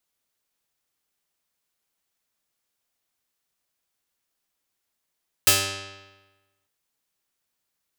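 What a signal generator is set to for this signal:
Karplus-Strong string G2, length 1.20 s, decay 1.20 s, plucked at 0.42, medium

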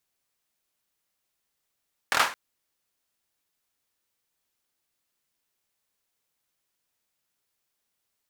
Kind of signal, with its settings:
synth clap length 0.22 s, apart 25 ms, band 1,200 Hz, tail 0.34 s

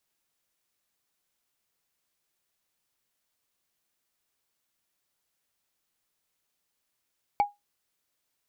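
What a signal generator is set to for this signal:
struck wood, lowest mode 819 Hz, decay 0.18 s, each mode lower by 12 dB, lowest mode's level −15.5 dB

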